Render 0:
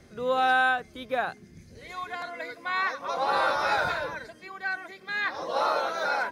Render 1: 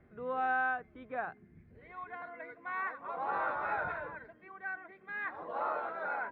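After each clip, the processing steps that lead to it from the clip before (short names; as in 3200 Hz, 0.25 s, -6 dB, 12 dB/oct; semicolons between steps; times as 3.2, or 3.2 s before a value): LPF 2100 Hz 24 dB/oct; notch 540 Hz, Q 12; gain -8.5 dB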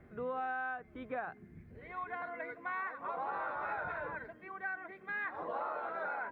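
compressor 6:1, threshold -40 dBFS, peak gain reduction 11.5 dB; gain +4.5 dB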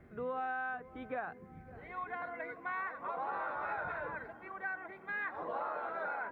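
darkening echo 0.558 s, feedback 77%, low-pass 1300 Hz, level -17 dB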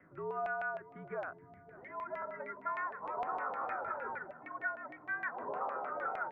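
mistuned SSB -74 Hz 200–3600 Hz; LFO low-pass saw down 6.5 Hz 700–2400 Hz; gain -3.5 dB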